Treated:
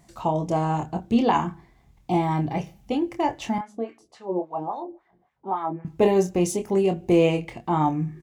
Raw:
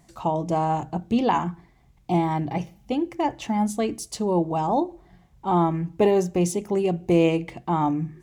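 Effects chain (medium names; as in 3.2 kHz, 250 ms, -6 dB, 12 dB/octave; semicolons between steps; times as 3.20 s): 3.58–5.85 s: wah-wah 3.6 Hz 320–2000 Hz, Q 2; doubling 26 ms -7 dB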